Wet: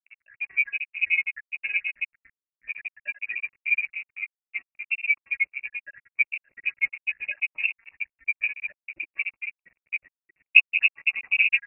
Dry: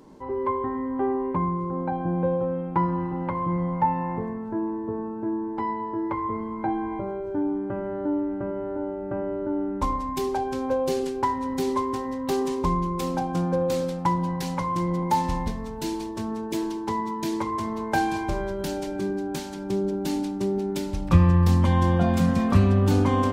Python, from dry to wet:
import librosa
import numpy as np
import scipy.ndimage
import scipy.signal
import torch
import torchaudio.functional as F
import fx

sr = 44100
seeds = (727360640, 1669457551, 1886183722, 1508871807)

y = fx.spec_dropout(x, sr, seeds[0], share_pct=78)
y = fx.stretch_vocoder_free(y, sr, factor=0.5)
y = np.sign(y) * np.maximum(np.abs(y) - 10.0 ** (-46.0 / 20.0), 0.0)
y = fx.low_shelf_res(y, sr, hz=700.0, db=12.5, q=1.5)
y = fx.freq_invert(y, sr, carrier_hz=2700)
y = y * 10.0 ** (-4.0 / 20.0)